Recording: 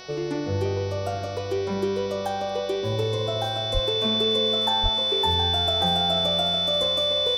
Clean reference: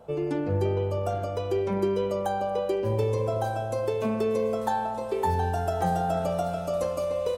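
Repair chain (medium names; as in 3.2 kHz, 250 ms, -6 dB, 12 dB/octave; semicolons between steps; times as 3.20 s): de-hum 371.5 Hz, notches 16; band-stop 3.5 kHz, Q 30; 3.73–3.85 s: high-pass 140 Hz 24 dB/octave; 4.82–4.94 s: high-pass 140 Hz 24 dB/octave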